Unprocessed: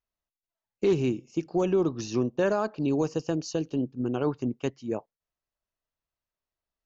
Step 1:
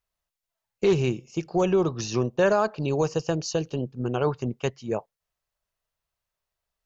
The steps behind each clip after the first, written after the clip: peaking EQ 280 Hz -12 dB 0.59 oct; trim +6 dB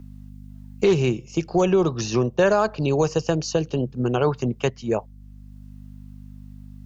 hum 50 Hz, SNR 24 dB; three bands compressed up and down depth 40%; trim +4 dB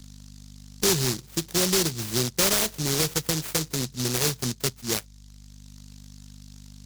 delay time shaken by noise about 5.2 kHz, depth 0.41 ms; trim -4.5 dB

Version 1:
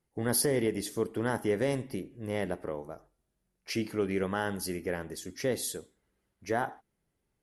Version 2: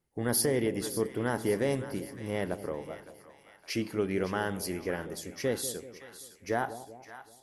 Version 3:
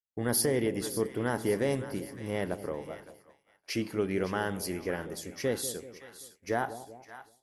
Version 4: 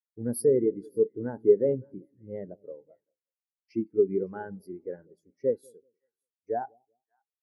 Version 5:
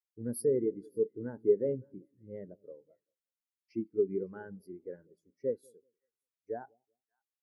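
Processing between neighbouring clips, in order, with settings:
two-band feedback delay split 820 Hz, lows 192 ms, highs 561 ms, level -12.5 dB
expander -47 dBFS
spectral contrast expander 2.5:1; trim +6 dB
peaking EQ 760 Hz -9 dB 0.44 oct; trim -5.5 dB

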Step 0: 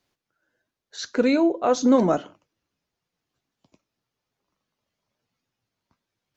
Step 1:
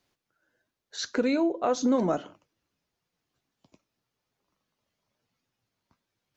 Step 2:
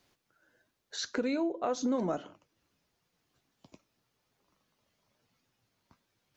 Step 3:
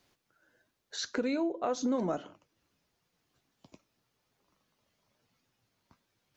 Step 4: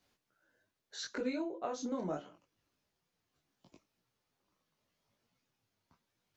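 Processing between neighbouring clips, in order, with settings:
compression 2:1, threshold -26 dBFS, peak gain reduction 7.5 dB
compression 1.5:1, threshold -52 dBFS, peak gain reduction 11.5 dB; trim +4.5 dB
no audible change
detune thickener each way 27 cents; trim -2 dB

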